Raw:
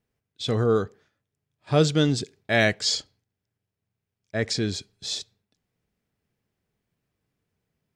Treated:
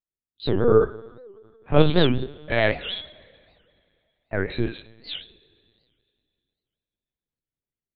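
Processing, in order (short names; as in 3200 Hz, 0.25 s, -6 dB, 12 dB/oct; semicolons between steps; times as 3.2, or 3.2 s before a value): 4.64–5.15 Chebyshev high-pass 1400 Hz, order 2; spectral noise reduction 20 dB; AGC gain up to 5.5 dB; rotary speaker horn 0.9 Hz, later 5 Hz, at 3.37; chorus 1.2 Hz, delay 18 ms, depth 7.3 ms; two-slope reverb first 0.4 s, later 2.5 s, from -19 dB, DRR 7.5 dB; LPC vocoder at 8 kHz pitch kept; record warp 78 rpm, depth 250 cents; gain +3 dB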